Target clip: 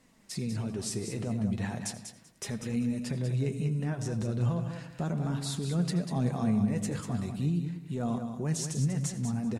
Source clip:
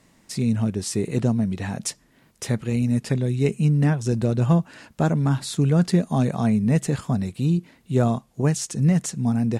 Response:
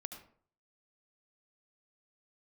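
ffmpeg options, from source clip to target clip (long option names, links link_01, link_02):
-filter_complex "[0:a]alimiter=limit=-18.5dB:level=0:latency=1:release=29,flanger=delay=3.8:depth=6.5:regen=47:speed=0.37:shape=triangular,aecho=1:1:193|386|579:0.398|0.0717|0.0129,asplit=2[link_01][link_02];[1:a]atrim=start_sample=2205,asetrate=39690,aresample=44100[link_03];[link_02][link_03]afir=irnorm=-1:irlink=0,volume=0.5dB[link_04];[link_01][link_04]amix=inputs=2:normalize=0,volume=-6.5dB"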